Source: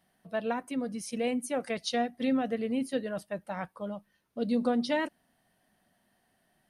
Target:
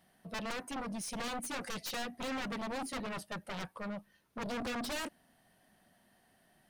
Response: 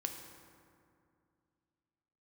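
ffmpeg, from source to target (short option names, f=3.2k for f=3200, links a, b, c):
-af "aeval=exprs='0.126*(cos(1*acos(clip(val(0)/0.126,-1,1)))-cos(1*PI/2))+0.0158*(cos(4*acos(clip(val(0)/0.126,-1,1)))-cos(4*PI/2))+0.0398*(cos(7*acos(clip(val(0)/0.126,-1,1)))-cos(7*PI/2))':c=same,asoftclip=type=tanh:threshold=-36.5dB,volume=1.5dB"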